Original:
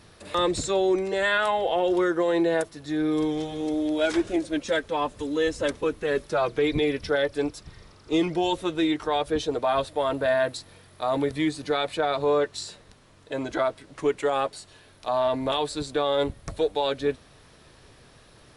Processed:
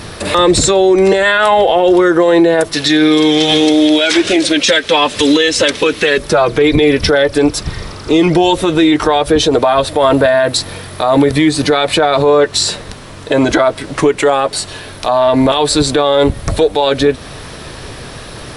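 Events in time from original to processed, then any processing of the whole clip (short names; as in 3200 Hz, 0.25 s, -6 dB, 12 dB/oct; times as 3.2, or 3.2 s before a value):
2.73–6.18 weighting filter D
whole clip: compressor, threshold -27 dBFS; notch 6800 Hz, Q 27; maximiser +25 dB; gain -1 dB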